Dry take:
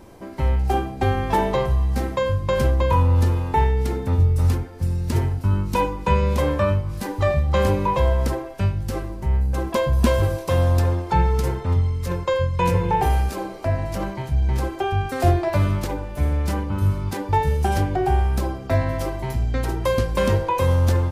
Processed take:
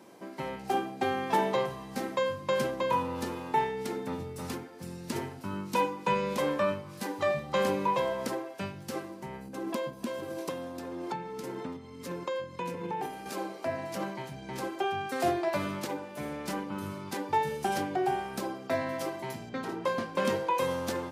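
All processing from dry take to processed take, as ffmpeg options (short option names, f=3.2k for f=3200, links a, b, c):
-filter_complex "[0:a]asettb=1/sr,asplit=3[a][b][c];[a]atrim=end=9.484[d];[b]atrim=start=9.48:end=13.26,asetpts=PTS-STARTPTS,afade=t=in:d=0.004:c=qsin,afade=t=out:st=3.776:d=0.004:c=qsin,acompressor=threshold=-24dB:ratio=10:attack=3.2:release=140:knee=1:detection=peak,equalizer=f=280:t=o:w=0.88:g=8[e];[c]atrim=start=13.256[f];[d][e]acrossfade=d=0.004:c1=hsin:c2=qsin[g];[g][f]acrossfade=d=0.004:c1=qsin:c2=hsin,asettb=1/sr,asplit=3[h][i][j];[h]atrim=end=19.494[k];[i]atrim=start=19.49:end=20.25,asetpts=PTS-STARTPTS,afade=t=in:d=0.004:c=qsin,afade=t=out:st=0.756:d=0.004:c=qsin,lowpass=f=2.6k:p=1,asoftclip=type=hard:threshold=-14dB,asplit=2[l][m];[m]adelay=22,volume=-7dB[n];[l][n]amix=inputs=2:normalize=0,atrim=end_sample=33516[o];[j]atrim=start=20.246[p];[k][o]acrossfade=d=0.004:c1=hsin:c2=qsin[q];[q][p]acrossfade=d=0.004:c1=qsin:c2=hsin,highpass=f=170:w=0.5412,highpass=f=170:w=1.3066,equalizer=f=4k:w=0.3:g=3,volume=-7dB"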